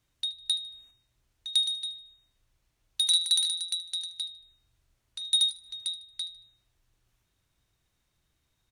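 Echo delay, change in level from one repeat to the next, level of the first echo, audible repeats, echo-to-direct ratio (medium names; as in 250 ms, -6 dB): 76 ms, -9.5 dB, -16.5 dB, 2, -16.0 dB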